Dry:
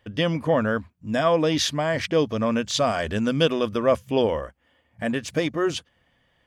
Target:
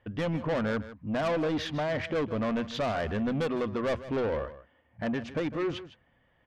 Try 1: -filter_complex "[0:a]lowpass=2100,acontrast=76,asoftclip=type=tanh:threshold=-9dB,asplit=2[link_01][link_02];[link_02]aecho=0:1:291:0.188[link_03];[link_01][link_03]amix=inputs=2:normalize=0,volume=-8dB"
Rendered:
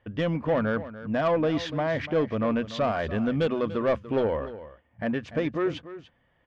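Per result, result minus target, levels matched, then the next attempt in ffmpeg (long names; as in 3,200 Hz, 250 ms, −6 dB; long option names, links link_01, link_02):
echo 136 ms late; soft clipping: distortion −9 dB
-filter_complex "[0:a]lowpass=2100,acontrast=76,asoftclip=type=tanh:threshold=-9dB,asplit=2[link_01][link_02];[link_02]aecho=0:1:155:0.188[link_03];[link_01][link_03]amix=inputs=2:normalize=0,volume=-8dB"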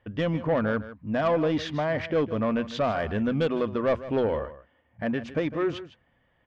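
soft clipping: distortion −9 dB
-filter_complex "[0:a]lowpass=2100,acontrast=76,asoftclip=type=tanh:threshold=-17.5dB,asplit=2[link_01][link_02];[link_02]aecho=0:1:155:0.188[link_03];[link_01][link_03]amix=inputs=2:normalize=0,volume=-8dB"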